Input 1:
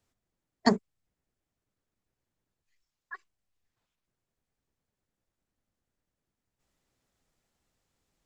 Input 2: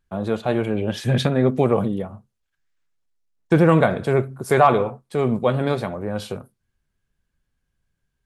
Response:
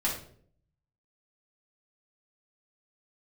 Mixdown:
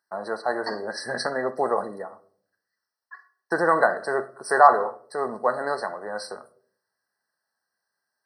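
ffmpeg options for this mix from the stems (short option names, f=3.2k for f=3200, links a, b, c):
-filter_complex "[0:a]volume=-5.5dB,asplit=2[a][b];[b]volume=-8dB[c];[1:a]volume=2dB,asplit=3[d][e][f];[e]volume=-18dB[g];[f]apad=whole_len=364044[h];[a][h]sidechaincompress=threshold=-23dB:ratio=8:attack=16:release=135[i];[2:a]atrim=start_sample=2205[j];[c][g]amix=inputs=2:normalize=0[k];[k][j]afir=irnorm=-1:irlink=0[l];[i][d][l]amix=inputs=3:normalize=0,highpass=730,afftfilt=real='re*eq(mod(floor(b*sr/1024/2000),2),0)':imag='im*eq(mod(floor(b*sr/1024/2000),2),0)':win_size=1024:overlap=0.75"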